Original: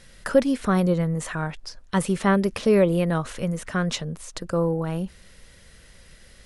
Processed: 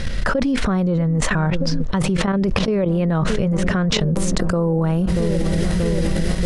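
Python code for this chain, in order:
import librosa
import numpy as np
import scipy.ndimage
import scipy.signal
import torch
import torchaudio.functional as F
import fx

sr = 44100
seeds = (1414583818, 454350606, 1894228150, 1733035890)

y = fx.lowpass(x, sr, hz=fx.steps((0.0, 5500.0), (4.0, 9800.0)), slope=12)
y = fx.echo_wet_lowpass(y, sr, ms=633, feedback_pct=72, hz=760.0, wet_db=-19.5)
y = fx.dynamic_eq(y, sr, hz=820.0, q=0.88, threshold_db=-36.0, ratio=4.0, max_db=3)
y = fx.level_steps(y, sr, step_db=16)
y = fx.low_shelf(y, sr, hz=260.0, db=10.0)
y = fx.env_flatten(y, sr, amount_pct=100)
y = y * 10.0 ** (-6.5 / 20.0)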